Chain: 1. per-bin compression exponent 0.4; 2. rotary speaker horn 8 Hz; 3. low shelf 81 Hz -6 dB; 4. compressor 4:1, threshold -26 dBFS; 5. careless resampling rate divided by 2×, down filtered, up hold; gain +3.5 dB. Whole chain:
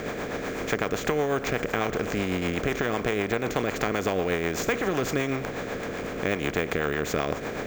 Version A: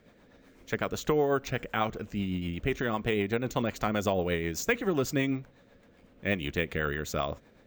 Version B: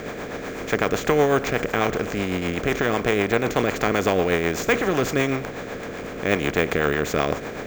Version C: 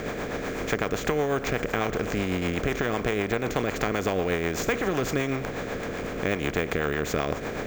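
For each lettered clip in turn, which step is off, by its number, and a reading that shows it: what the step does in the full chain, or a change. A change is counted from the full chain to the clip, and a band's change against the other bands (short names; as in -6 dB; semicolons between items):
1, 125 Hz band +2.5 dB; 4, momentary loudness spread change +6 LU; 3, 125 Hz band +1.5 dB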